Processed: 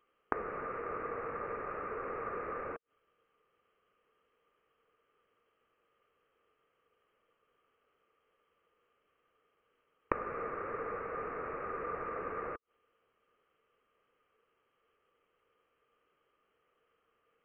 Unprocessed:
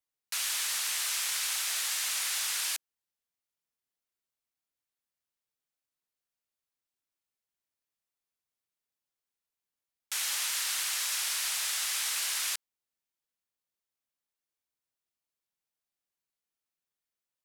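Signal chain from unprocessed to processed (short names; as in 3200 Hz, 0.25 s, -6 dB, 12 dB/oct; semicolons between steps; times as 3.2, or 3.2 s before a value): inverted band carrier 3200 Hz; small resonant body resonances 460/1200 Hz, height 18 dB, ringing for 30 ms; flipped gate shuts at -28 dBFS, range -24 dB; gain +15 dB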